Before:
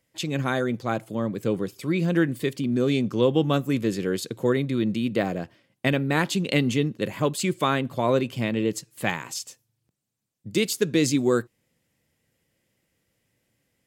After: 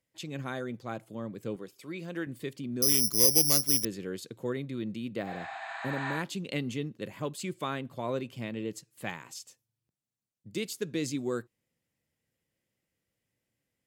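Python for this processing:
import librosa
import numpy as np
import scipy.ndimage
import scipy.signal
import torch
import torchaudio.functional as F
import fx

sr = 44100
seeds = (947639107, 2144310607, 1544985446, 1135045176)

y = fx.highpass(x, sr, hz=360.0, slope=6, at=(1.56, 2.27))
y = fx.resample_bad(y, sr, factor=8, down='none', up='zero_stuff', at=(2.82, 3.85))
y = fx.spec_repair(y, sr, seeds[0], start_s=5.29, length_s=0.86, low_hz=630.0, high_hz=8800.0, source='both')
y = y * librosa.db_to_amplitude(-11.0)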